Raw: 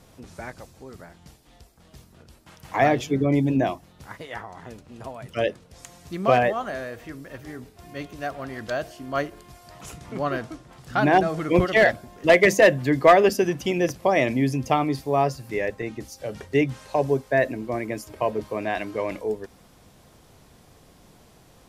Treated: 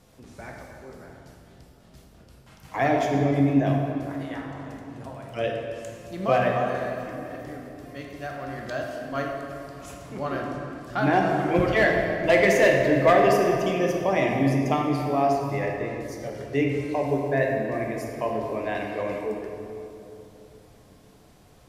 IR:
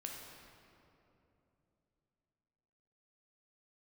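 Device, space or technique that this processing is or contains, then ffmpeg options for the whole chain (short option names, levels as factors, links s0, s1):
stairwell: -filter_complex "[1:a]atrim=start_sample=2205[s0];[0:a][s0]afir=irnorm=-1:irlink=0,asettb=1/sr,asplit=3[s1][s2][s3];[s1]atrim=end=16.054[s4];[s2]atrim=start=16.05:end=16.45,asetpts=PTS-STARTPTS,afade=t=in:d=0.004:c=qsin,afade=t=out:st=0.396:d=0.004:c=qsin,bandreject=f=2600:w=9.1[s5];[s3]atrim=start=16.446[s6];[s4][s5]acrossfade=d=0.004:c1=hsin:c2=qsin[s7];[s7][s6]acrossfade=d=0.004:c1=qsin:c2=hsin"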